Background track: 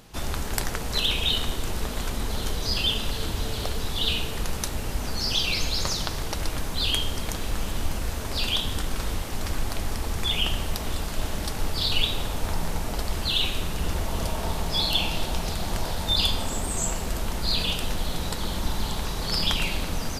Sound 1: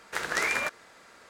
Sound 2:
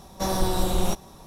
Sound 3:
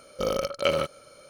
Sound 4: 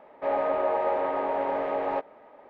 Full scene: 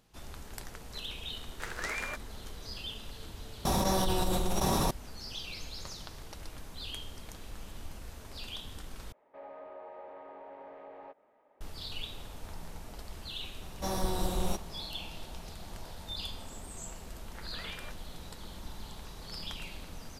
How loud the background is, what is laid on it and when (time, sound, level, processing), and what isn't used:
background track −16.5 dB
0:01.47: mix in 1 −9 dB
0:03.65: mix in 2 −11 dB + envelope flattener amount 100%
0:09.12: overwrite with 4 −15.5 dB + downward compressor 1.5 to 1, threshold −38 dBFS
0:13.62: mix in 2 −8 dB
0:17.22: mix in 1 −17.5 dB + Bessel low-pass filter 2,700 Hz
not used: 3

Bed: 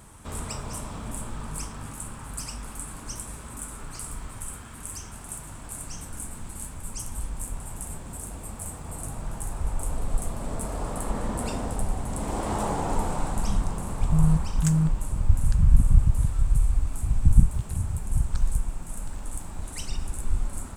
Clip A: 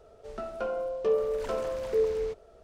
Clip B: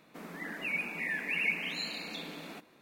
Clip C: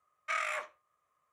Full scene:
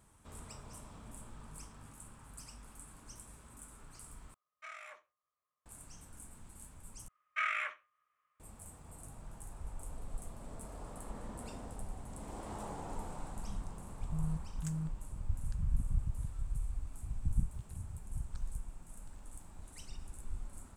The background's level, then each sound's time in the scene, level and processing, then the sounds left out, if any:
bed −16 dB
0:04.34: overwrite with C −15.5 dB
0:07.08: overwrite with C −11.5 dB + flat-topped bell 2,000 Hz +12 dB
not used: A, B

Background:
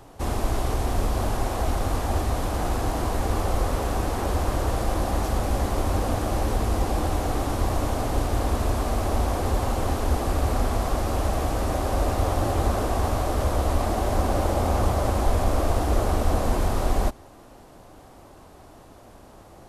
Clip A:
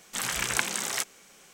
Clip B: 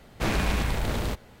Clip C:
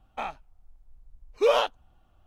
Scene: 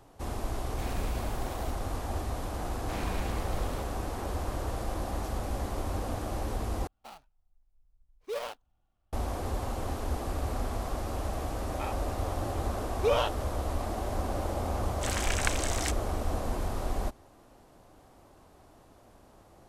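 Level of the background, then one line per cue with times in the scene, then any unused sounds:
background −9 dB
0:00.57: mix in B −16 dB + high-shelf EQ 9,300 Hz +11.5 dB
0:02.68: mix in B −12 dB
0:06.87: overwrite with C −14 dB + gap after every zero crossing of 0.19 ms
0:11.62: mix in C −5 dB
0:14.88: mix in A −4 dB + low-pass filter 11,000 Hz

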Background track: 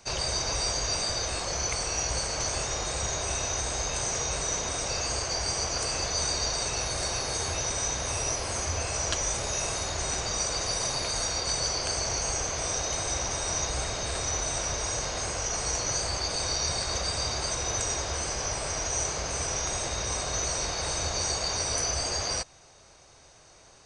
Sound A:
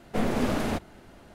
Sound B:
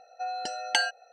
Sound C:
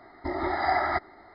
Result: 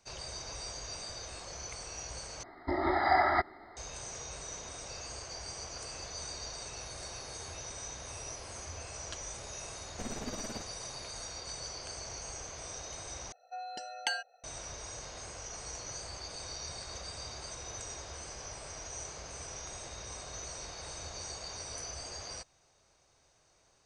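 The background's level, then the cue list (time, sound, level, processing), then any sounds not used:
background track −13.5 dB
0:02.43: overwrite with C −1 dB
0:09.84: mix in A −12 dB + amplitude tremolo 18 Hz, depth 87%
0:13.32: overwrite with B −8.5 dB

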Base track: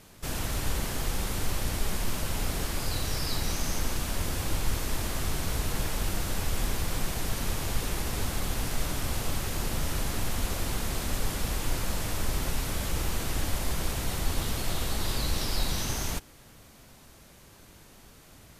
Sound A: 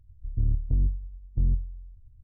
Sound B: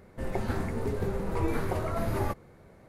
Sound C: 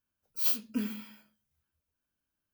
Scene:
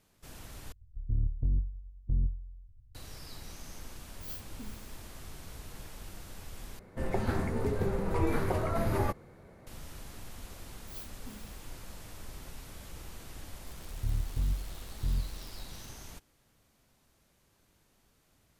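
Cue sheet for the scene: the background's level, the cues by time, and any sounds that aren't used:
base track −16 dB
0:00.72: overwrite with A −5 dB
0:03.84: mix in C −15.5 dB
0:06.79: overwrite with B
0:10.51: mix in C −17 dB + wow of a warped record 78 rpm, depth 100 cents
0:13.66: mix in A −7 dB + spike at every zero crossing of −24.5 dBFS

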